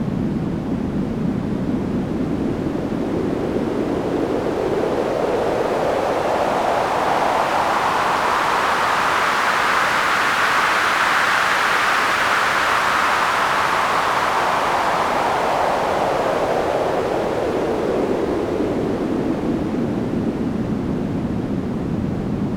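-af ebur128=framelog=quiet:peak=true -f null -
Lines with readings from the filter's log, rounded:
Integrated loudness:
  I:         -19.1 LUFS
  Threshold: -29.1 LUFS
Loudness range:
  LRA:         5.9 LU
  Threshold: -38.7 LUFS
  LRA low:   -22.1 LUFS
  LRA high:  -16.2 LUFS
True peak:
  Peak:       -4.2 dBFS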